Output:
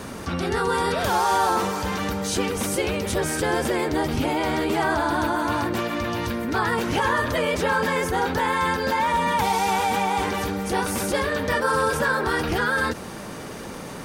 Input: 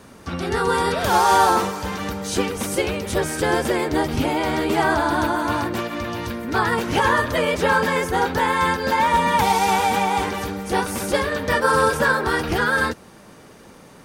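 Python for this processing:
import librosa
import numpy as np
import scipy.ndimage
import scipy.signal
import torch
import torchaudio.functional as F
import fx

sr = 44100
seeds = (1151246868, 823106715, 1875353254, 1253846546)

y = fx.env_flatten(x, sr, amount_pct=50)
y = y * librosa.db_to_amplitude(-6.0)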